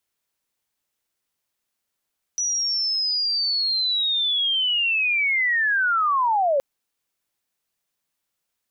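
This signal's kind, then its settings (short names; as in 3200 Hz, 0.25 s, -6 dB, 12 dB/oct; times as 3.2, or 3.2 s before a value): chirp linear 5900 Hz -> 530 Hz -21 dBFS -> -17 dBFS 4.22 s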